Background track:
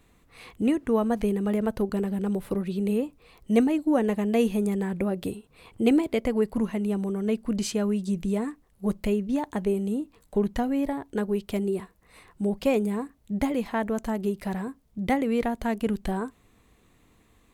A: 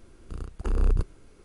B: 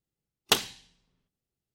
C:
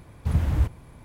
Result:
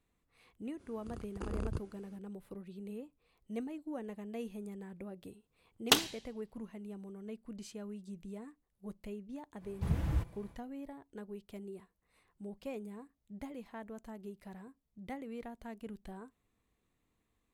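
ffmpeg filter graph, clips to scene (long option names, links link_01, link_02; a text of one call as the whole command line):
ffmpeg -i bed.wav -i cue0.wav -i cue1.wav -i cue2.wav -filter_complex "[0:a]volume=-19dB[link_01];[1:a]highpass=79[link_02];[3:a]aecho=1:1:6:0.34[link_03];[link_02]atrim=end=1.44,asetpts=PTS-STARTPTS,volume=-6.5dB,afade=type=in:duration=0.05,afade=type=out:start_time=1.39:duration=0.05,adelay=760[link_04];[2:a]atrim=end=1.74,asetpts=PTS-STARTPTS,volume=-2.5dB,afade=type=in:duration=0.004:curve=hsin,afade=type=out:start_time=1.736:duration=0.004:curve=hsin,adelay=5400[link_05];[link_03]atrim=end=1.04,asetpts=PTS-STARTPTS,volume=-8.5dB,afade=type=in:duration=0.1,afade=type=out:start_time=0.94:duration=0.1,adelay=9560[link_06];[link_01][link_04][link_05][link_06]amix=inputs=4:normalize=0" out.wav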